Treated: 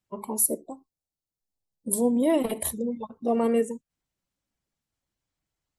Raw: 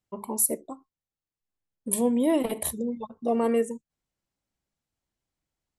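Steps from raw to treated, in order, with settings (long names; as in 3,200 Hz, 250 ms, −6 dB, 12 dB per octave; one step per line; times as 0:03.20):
spectral magnitudes quantised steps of 15 dB
0:00.44–0:02.23: flat-topped bell 1,900 Hz −16 dB
level +1 dB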